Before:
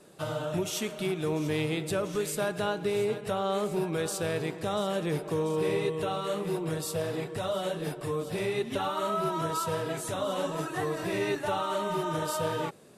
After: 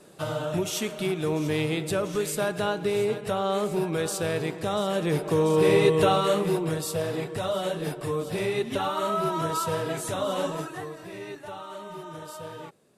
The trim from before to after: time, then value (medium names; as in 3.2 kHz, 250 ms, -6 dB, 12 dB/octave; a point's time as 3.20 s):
4.85 s +3 dB
6.05 s +11 dB
6.80 s +3 dB
10.48 s +3 dB
10.99 s -9 dB